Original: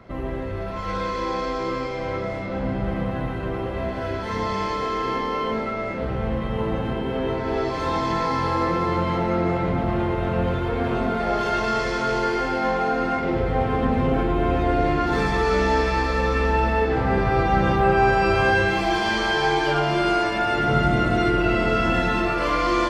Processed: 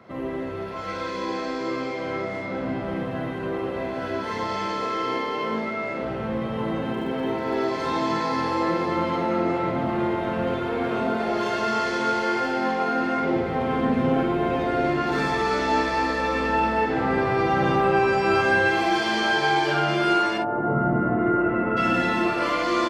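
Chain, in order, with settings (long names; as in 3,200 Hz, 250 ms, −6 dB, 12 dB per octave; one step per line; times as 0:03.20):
high-pass filter 150 Hz 12 dB per octave
0:06.92–0:07.68: surface crackle 110 per second −41 dBFS
0:20.37–0:21.76: low-pass filter 1,100 Hz → 1,800 Hz 24 dB per octave
ambience of single reflections 49 ms −5.5 dB, 64 ms −13 dB
level −1.5 dB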